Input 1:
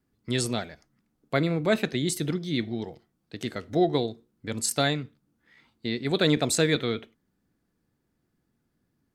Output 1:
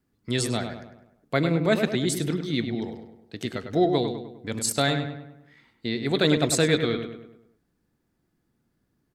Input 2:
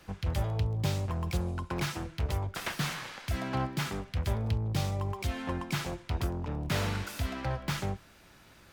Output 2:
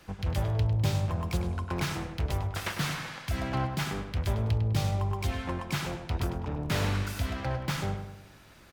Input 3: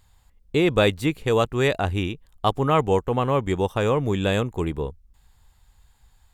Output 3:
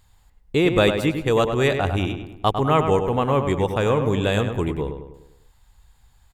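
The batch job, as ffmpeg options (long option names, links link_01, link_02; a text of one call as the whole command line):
ffmpeg -i in.wav -filter_complex "[0:a]asplit=2[link_01][link_02];[link_02]adelay=101,lowpass=frequency=2800:poles=1,volume=-7dB,asplit=2[link_03][link_04];[link_04]adelay=101,lowpass=frequency=2800:poles=1,volume=0.49,asplit=2[link_05][link_06];[link_06]adelay=101,lowpass=frequency=2800:poles=1,volume=0.49,asplit=2[link_07][link_08];[link_08]adelay=101,lowpass=frequency=2800:poles=1,volume=0.49,asplit=2[link_09][link_10];[link_10]adelay=101,lowpass=frequency=2800:poles=1,volume=0.49,asplit=2[link_11][link_12];[link_12]adelay=101,lowpass=frequency=2800:poles=1,volume=0.49[link_13];[link_01][link_03][link_05][link_07][link_09][link_11][link_13]amix=inputs=7:normalize=0,volume=1dB" out.wav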